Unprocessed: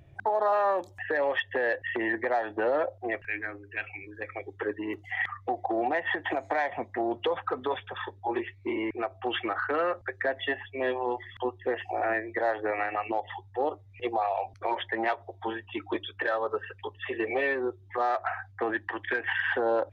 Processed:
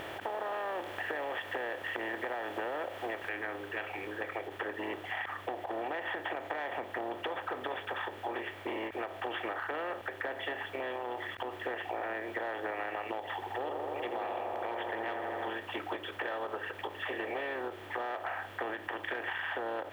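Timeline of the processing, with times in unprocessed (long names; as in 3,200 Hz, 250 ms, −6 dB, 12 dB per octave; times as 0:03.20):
0:03.29: noise floor change −56 dB −69 dB
0:10.68–0:11.53: downward compressor, threshold −33 dBFS
0:13.34–0:15.50: delay with a low-pass on its return 82 ms, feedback 77%, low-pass 930 Hz, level −5 dB
whole clip: compressor on every frequency bin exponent 0.4; downward compressor, threshold −24 dBFS; every ending faded ahead of time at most 230 dB per second; level −9 dB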